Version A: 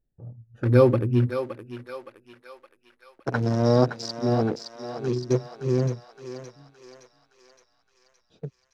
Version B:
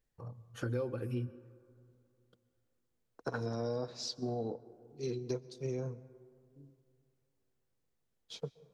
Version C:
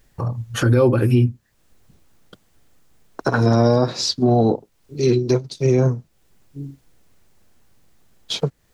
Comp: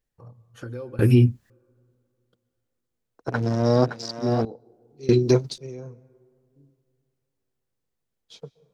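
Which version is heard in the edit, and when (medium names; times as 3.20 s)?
B
0.99–1.50 s: from C
3.28–4.45 s: from A
5.09–5.58 s: from C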